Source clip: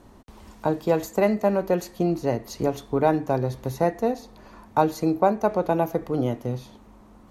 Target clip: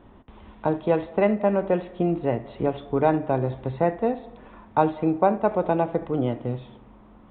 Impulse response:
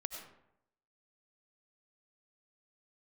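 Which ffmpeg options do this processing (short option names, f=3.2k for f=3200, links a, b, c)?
-filter_complex "[0:a]asplit=2[a][b];[1:a]atrim=start_sample=2205,lowpass=2.1k,adelay=76[c];[b][c]afir=irnorm=-1:irlink=0,volume=-15dB[d];[a][d]amix=inputs=2:normalize=0,aresample=8000,aresample=44100"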